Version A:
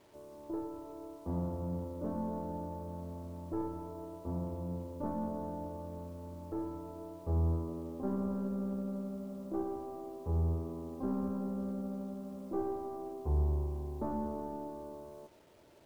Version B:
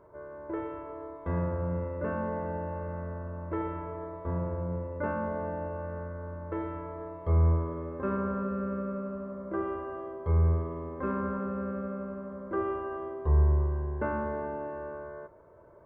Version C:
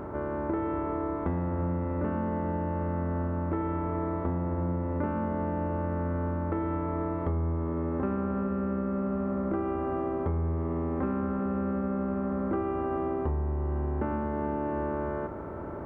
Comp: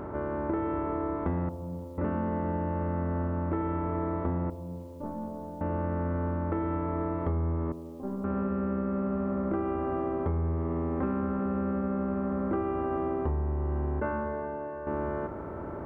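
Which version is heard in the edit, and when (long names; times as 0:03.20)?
C
0:01.49–0:01.98: punch in from A
0:04.50–0:05.61: punch in from A
0:07.72–0:08.24: punch in from A
0:14.00–0:14.87: punch in from B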